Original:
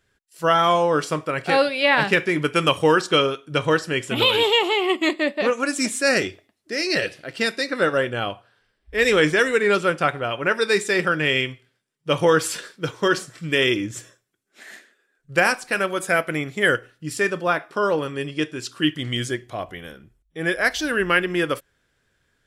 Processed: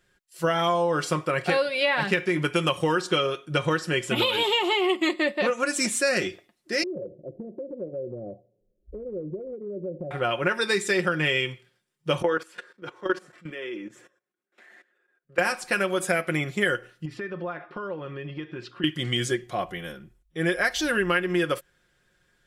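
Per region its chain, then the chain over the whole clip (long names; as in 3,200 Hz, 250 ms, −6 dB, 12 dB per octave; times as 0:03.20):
0:06.83–0:10.11: Chebyshev low-pass filter 600 Hz, order 5 + downward compressor, threshold −33 dBFS
0:12.22–0:15.39: three-way crossover with the lows and the highs turned down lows −23 dB, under 210 Hz, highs −14 dB, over 2,500 Hz + output level in coarse steps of 18 dB
0:17.05–0:18.84: high-frequency loss of the air 340 metres + downward compressor 10 to 1, threshold −31 dBFS
whole clip: comb filter 5.6 ms, depth 53%; downward compressor, threshold −20 dBFS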